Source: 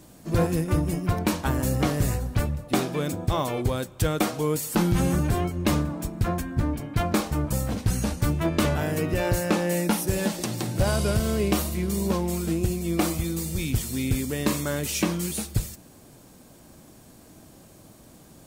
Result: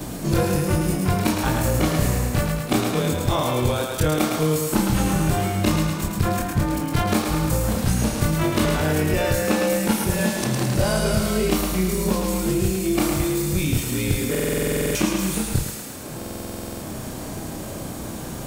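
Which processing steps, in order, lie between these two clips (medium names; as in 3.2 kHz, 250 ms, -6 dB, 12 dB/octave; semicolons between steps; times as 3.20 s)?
short-time spectra conjugated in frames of 65 ms; thinning echo 108 ms, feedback 55%, high-pass 380 Hz, level -4 dB; buffer glitch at 14.30/16.17 s, samples 2048, times 13; three bands compressed up and down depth 70%; trim +6 dB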